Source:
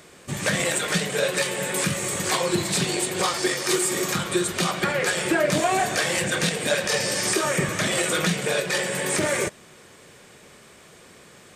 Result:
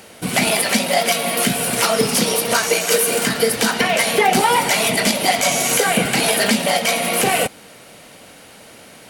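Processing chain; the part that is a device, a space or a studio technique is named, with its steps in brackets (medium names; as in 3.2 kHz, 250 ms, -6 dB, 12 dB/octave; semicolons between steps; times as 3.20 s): nightcore (tape speed +27%); trim +6.5 dB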